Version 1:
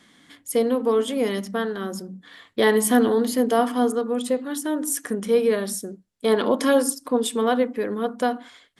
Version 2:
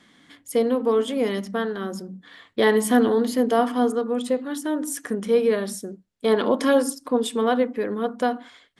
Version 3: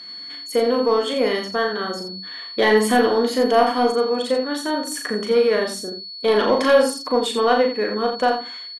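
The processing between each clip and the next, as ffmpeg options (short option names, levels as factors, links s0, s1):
-af "highshelf=f=7700:g=-8.5"
-filter_complex "[0:a]aeval=exprs='val(0)+0.0112*sin(2*PI*4400*n/s)':c=same,asplit=2[s0][s1];[s1]highpass=f=720:p=1,volume=3.98,asoftclip=type=tanh:threshold=0.531[s2];[s0][s2]amix=inputs=2:normalize=0,lowpass=f=3100:p=1,volume=0.501,aecho=1:1:37.9|84.55:0.631|0.398"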